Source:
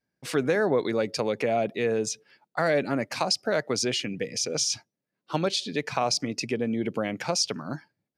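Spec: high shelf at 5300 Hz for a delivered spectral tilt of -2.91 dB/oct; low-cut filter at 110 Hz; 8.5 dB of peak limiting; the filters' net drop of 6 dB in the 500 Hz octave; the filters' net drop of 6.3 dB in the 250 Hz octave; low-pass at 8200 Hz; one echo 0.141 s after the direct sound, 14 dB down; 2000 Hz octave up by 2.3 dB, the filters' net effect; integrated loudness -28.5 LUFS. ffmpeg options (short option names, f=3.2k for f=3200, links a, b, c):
-af "highpass=110,lowpass=8.2k,equalizer=f=250:t=o:g=-6,equalizer=f=500:t=o:g=-6,equalizer=f=2k:t=o:g=4.5,highshelf=f=5.3k:g=-8,alimiter=limit=-20dB:level=0:latency=1,aecho=1:1:141:0.2,volume=4dB"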